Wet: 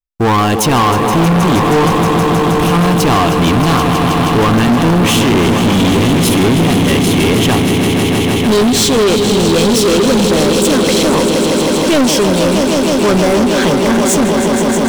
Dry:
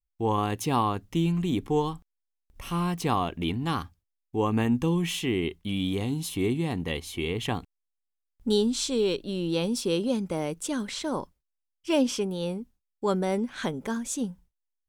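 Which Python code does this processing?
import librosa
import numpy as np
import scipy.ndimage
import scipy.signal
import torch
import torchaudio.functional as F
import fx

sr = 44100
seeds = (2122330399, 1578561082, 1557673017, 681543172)

y = fx.echo_swell(x, sr, ms=158, loudest=5, wet_db=-10.5)
y = fx.leveller(y, sr, passes=5)
y = y * librosa.db_to_amplitude(4.0)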